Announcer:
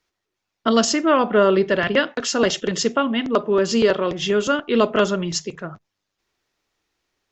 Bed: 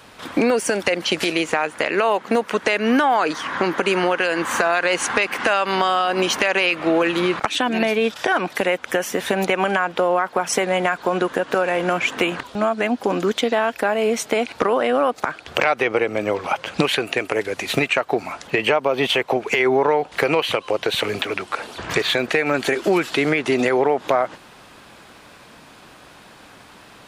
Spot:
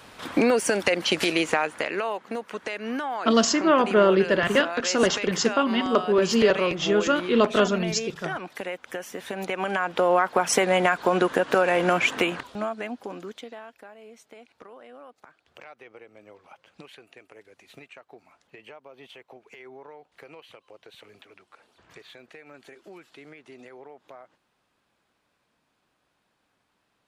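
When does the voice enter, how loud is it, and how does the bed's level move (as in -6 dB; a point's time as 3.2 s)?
2.60 s, -2.5 dB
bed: 1.56 s -2.5 dB
2.26 s -13 dB
9.28 s -13 dB
10.15 s -1 dB
12.05 s -1 dB
13.99 s -28 dB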